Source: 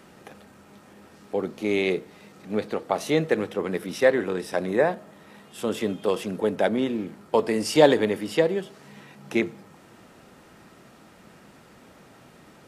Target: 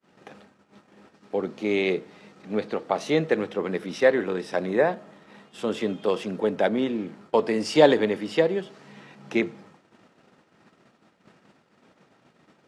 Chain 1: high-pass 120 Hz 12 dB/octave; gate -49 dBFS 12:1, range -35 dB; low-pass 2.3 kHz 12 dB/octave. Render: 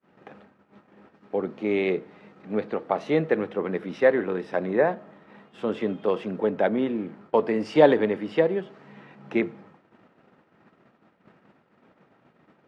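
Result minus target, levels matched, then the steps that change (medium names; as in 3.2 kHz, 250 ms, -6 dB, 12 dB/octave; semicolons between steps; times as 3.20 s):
8 kHz band -15.0 dB
change: low-pass 6 kHz 12 dB/octave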